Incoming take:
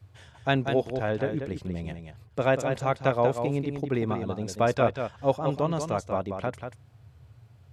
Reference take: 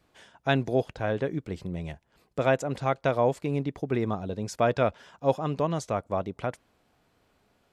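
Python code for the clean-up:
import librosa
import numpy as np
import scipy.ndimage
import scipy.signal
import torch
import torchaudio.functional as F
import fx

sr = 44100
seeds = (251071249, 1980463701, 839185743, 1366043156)

y = fx.noise_reduce(x, sr, print_start_s=6.75, print_end_s=7.25, reduce_db=15.0)
y = fx.fix_echo_inverse(y, sr, delay_ms=188, level_db=-7.0)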